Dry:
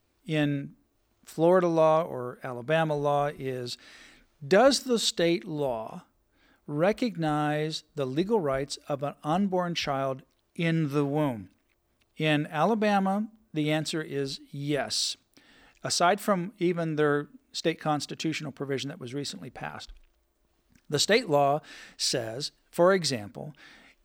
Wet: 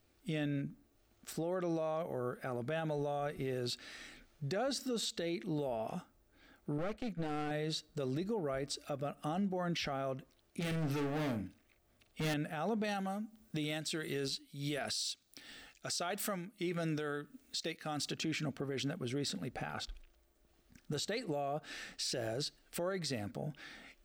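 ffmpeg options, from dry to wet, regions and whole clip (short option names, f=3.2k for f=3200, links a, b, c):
-filter_complex "[0:a]asettb=1/sr,asplit=3[a][b][c];[a]atrim=end=6.784[d];[b]atrim=start=6.78:end=7.51,asetpts=PTS-STARTPTS,afade=t=in:d=0.004:c=qsin,afade=t=out:st=0.726:d=0.004:c=qsin,aeval=exprs='clip(val(0),-1,0.0178)':c=same,agate=range=-33dB:threshold=-35dB:ratio=3:release=100:detection=peak,highshelf=f=8.1k:g=-7.5[e];[c]atrim=start=7.506[f];[d][e]acrossfade=d=0.004:c1=hsin:c2=qsin[g];[g][f]acrossfade=d=0.004:c1=qsin:c2=hsin,asettb=1/sr,asplit=3[h][i][j];[h]atrim=end=10.604[k];[i]atrim=start=10.6:end=12.34,asetpts=PTS-STARTPTS,afade=t=in:d=0.004:c=qsin,afade=t=out:st=1.736:d=0.004:c=qsin,volume=33.5dB,asoftclip=hard,volume=-33.5dB,asplit=2[l][m];[m]adelay=45,volume=-9dB[n];[l][n]amix=inputs=2:normalize=0,atrim=end_sample=76734[o];[j]atrim=start=12.336[p];[k][o]acrossfade=d=0.004:c1=hsin:c2=qsin[q];[q][p]acrossfade=d=0.004:c1=qsin:c2=hsin,asettb=1/sr,asplit=3[r][s][t];[r]atrim=end=12.844[u];[s]atrim=start=12.84:end=18.13,asetpts=PTS-STARTPTS,afade=t=in:d=0.004:c=qsin,afade=t=out:st=5.286:d=0.004:c=qsin,highshelf=f=2.2k:g=10,tremolo=f=1.5:d=0.74[v];[t]atrim=start=18.126[w];[u][v]acrossfade=d=0.004:c1=hsin:c2=qsin[x];[x][w]acrossfade=d=0.004:c1=qsin:c2=hsin,bandreject=f=1k:w=5.5,acompressor=threshold=-30dB:ratio=6,alimiter=level_in=5dB:limit=-24dB:level=0:latency=1:release=19,volume=-5dB"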